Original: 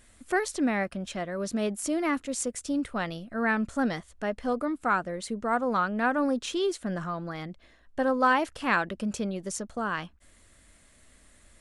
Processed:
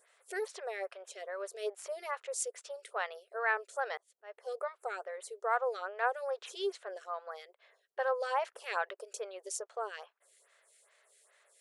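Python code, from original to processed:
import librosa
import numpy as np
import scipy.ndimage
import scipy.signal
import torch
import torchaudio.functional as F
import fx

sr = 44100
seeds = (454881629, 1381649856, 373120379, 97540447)

y = fx.brickwall_highpass(x, sr, low_hz=380.0)
y = fx.auto_swell(y, sr, attack_ms=315.0, at=(3.97, 4.47))
y = fx.stagger_phaser(y, sr, hz=2.4)
y = F.gain(torch.from_numpy(y), -2.5).numpy()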